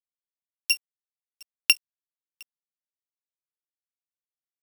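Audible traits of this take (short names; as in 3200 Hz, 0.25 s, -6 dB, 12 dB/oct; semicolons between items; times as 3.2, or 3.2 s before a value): a buzz of ramps at a fixed pitch in blocks of 8 samples; chopped level 8.5 Hz, depth 65%, duty 65%; a quantiser's noise floor 8-bit, dither none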